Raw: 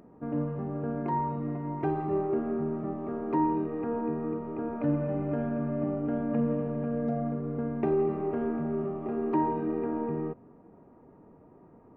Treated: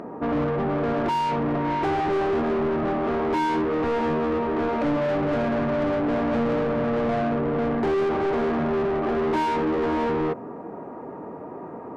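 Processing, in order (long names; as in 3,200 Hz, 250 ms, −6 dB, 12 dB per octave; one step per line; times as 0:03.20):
mid-hump overdrive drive 32 dB, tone 1,400 Hz, clips at −16.5 dBFS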